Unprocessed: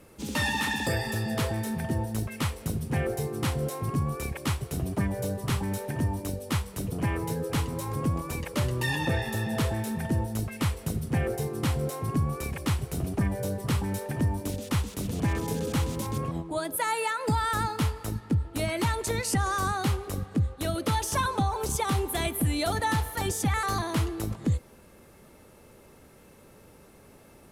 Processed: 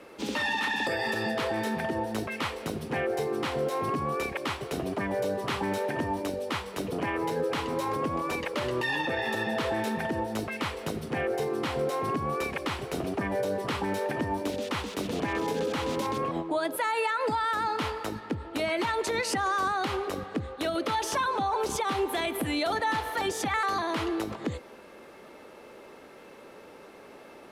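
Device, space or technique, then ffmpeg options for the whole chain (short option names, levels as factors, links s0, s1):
DJ mixer with the lows and highs turned down: -filter_complex "[0:a]acrossover=split=260 4800:gain=0.1 1 0.178[s0][s1][s2];[s0][s1][s2]amix=inputs=3:normalize=0,alimiter=level_in=1.68:limit=0.0631:level=0:latency=1:release=100,volume=0.596,volume=2.51"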